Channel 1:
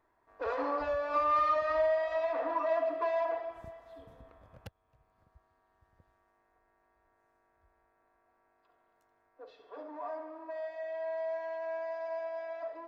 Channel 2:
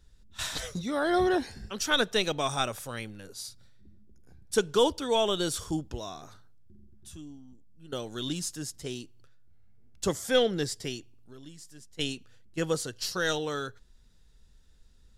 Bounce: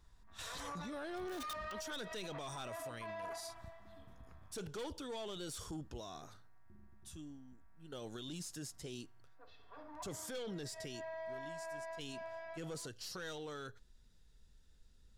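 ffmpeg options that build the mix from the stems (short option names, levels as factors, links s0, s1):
-filter_complex "[0:a]equalizer=f=470:t=o:w=1.1:g=-14.5,aeval=exprs='(mod(17.8*val(0)+1,2)-1)/17.8':c=same,volume=0.944[s0];[1:a]volume=0.562,asplit=2[s1][s2];[s2]apad=whole_len=567962[s3];[s0][s3]sidechaincompress=threshold=0.0112:ratio=8:attack=7.3:release=111[s4];[s4][s1]amix=inputs=2:normalize=0,aeval=exprs='(tanh(28.2*val(0)+0.25)-tanh(0.25))/28.2':c=same,alimiter=level_in=4.73:limit=0.0631:level=0:latency=1:release=20,volume=0.211"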